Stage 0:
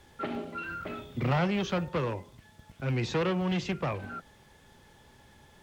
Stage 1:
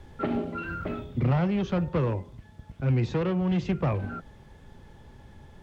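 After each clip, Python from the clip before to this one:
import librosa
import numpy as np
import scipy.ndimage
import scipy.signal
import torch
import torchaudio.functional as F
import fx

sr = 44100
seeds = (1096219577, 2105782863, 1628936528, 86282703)

y = fx.tilt_eq(x, sr, slope=-2.5)
y = fx.rider(y, sr, range_db=3, speed_s=0.5)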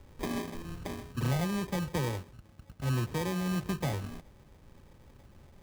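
y = fx.sample_hold(x, sr, seeds[0], rate_hz=1400.0, jitter_pct=0)
y = y * librosa.db_to_amplitude(-6.0)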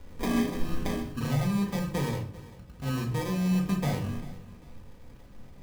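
y = fx.echo_feedback(x, sr, ms=394, feedback_pct=31, wet_db=-19)
y = fx.rider(y, sr, range_db=5, speed_s=0.5)
y = fx.room_shoebox(y, sr, seeds[1], volume_m3=410.0, walls='furnished', distance_m=1.8)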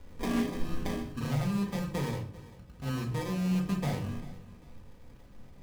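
y = fx.doppler_dist(x, sr, depth_ms=0.12)
y = y * librosa.db_to_amplitude(-3.0)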